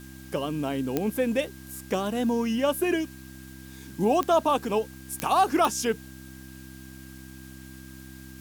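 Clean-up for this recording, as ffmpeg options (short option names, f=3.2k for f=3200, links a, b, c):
-af "adeclick=t=4,bandreject=f=65.5:t=h:w=4,bandreject=f=131:t=h:w=4,bandreject=f=196.5:t=h:w=4,bandreject=f=262:t=h:w=4,bandreject=f=327.5:t=h:w=4,bandreject=f=1.6k:w=30,afwtdn=0.0025"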